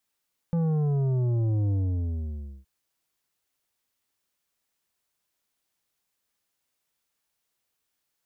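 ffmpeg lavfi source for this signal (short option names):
-f lavfi -i "aevalsrc='0.0708*clip((2.12-t)/0.94,0,1)*tanh(2.82*sin(2*PI*170*2.12/log(65/170)*(exp(log(65/170)*t/2.12)-1)))/tanh(2.82)':d=2.12:s=44100"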